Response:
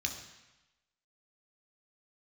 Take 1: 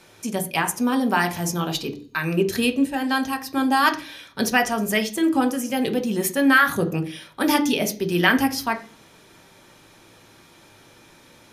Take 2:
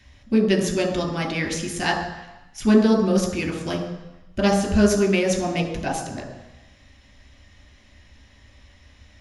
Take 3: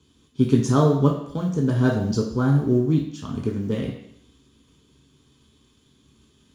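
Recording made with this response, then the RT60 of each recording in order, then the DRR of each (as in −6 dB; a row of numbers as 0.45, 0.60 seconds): 2; 0.50, 1.0, 0.70 seconds; 6.0, 2.5, −1.0 decibels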